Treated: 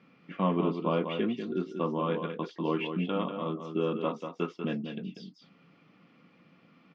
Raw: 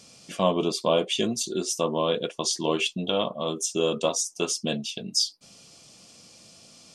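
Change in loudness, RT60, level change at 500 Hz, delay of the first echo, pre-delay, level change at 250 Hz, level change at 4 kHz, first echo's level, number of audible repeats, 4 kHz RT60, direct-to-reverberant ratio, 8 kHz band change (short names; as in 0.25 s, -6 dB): -6.0 dB, none, -6.0 dB, 0.192 s, none, -1.0 dB, -17.0 dB, -7.5 dB, 1, none, none, under -35 dB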